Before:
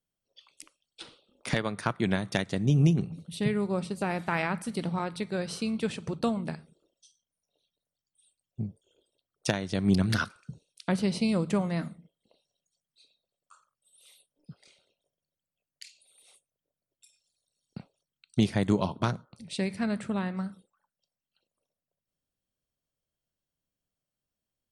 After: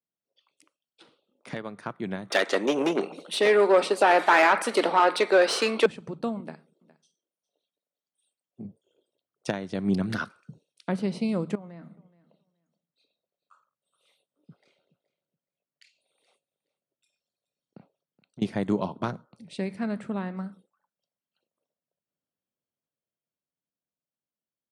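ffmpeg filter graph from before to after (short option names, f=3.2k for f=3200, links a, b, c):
-filter_complex "[0:a]asettb=1/sr,asplit=3[a][b][c];[a]atrim=end=2.304[d];[b]atrim=start=2.3:end=5.86,asetpts=PTS-STARTPTS,afade=t=in:d=0.004:c=qsin,afade=t=out:st=3.556:d=0.004:c=qsin,asplit=2[e][f];[f]highpass=f=720:p=1,volume=24dB,asoftclip=type=tanh:threshold=-10.5dB[g];[e][g]amix=inputs=2:normalize=0,lowpass=f=5.7k:p=1,volume=-6dB,acontrast=58,highpass=f=320:w=0.5412,highpass=f=320:w=1.3066[h];[c]atrim=start=5.856[i];[d][h]acrossfade=d=0.004:c1=hsin:c2=qsin[j];[j][i]acrossfade=d=0.004:c1=qsin:c2=hsin,asettb=1/sr,asplit=3[k][l][m];[k]atrim=end=6.404[n];[l]atrim=start=6.4:end=8.65,asetpts=PTS-STARTPTS,afade=t=in:d=0.004:c=qsin,afade=t=out:st=2.246:d=0.004:c=qsin,highpass=210,aecho=1:1:412:0.0944,atrim=end_sample=99225[o];[m]atrim=start=8.646[p];[n][o]acrossfade=d=0.004:c1=hsin:c2=qsin[q];[q][p]acrossfade=d=0.004:c1=qsin:c2=hsin,asettb=1/sr,asplit=3[r][s][t];[r]atrim=end=11.554[u];[s]atrim=start=11.55:end=18.42,asetpts=PTS-STARTPTS,afade=t=in:d=0.004:c=qsin,afade=t=out:st=6.866:d=0.004:c=qsin,highshelf=f=5.2k:g=-12,acompressor=threshold=-41dB:ratio=5:attack=3.2:release=140:knee=1:detection=peak,aecho=1:1:423|846:0.106|0.0201,atrim=end_sample=302967[v];[t]atrim=start=18.416[w];[u][v]acrossfade=d=0.004:c1=hsin:c2=qsin[x];[x][w]acrossfade=d=0.004:c1=qsin:c2=hsin,highpass=170,highshelf=f=2.6k:g=-11,dynaudnorm=f=280:g=17:m=6dB,volume=-5dB"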